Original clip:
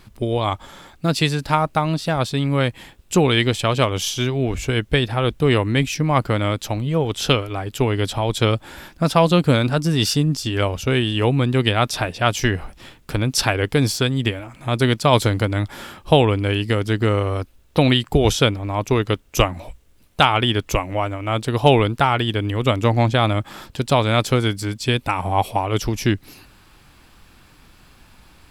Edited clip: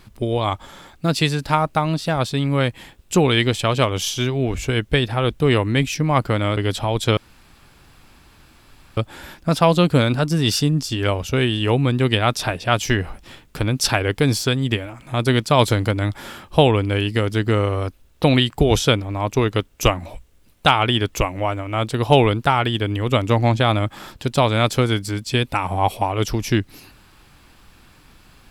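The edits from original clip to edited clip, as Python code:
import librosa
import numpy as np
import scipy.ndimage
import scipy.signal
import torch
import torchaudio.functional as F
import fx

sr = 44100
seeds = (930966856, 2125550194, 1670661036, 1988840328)

y = fx.edit(x, sr, fx.cut(start_s=6.57, length_s=1.34),
    fx.insert_room_tone(at_s=8.51, length_s=1.8), tone=tone)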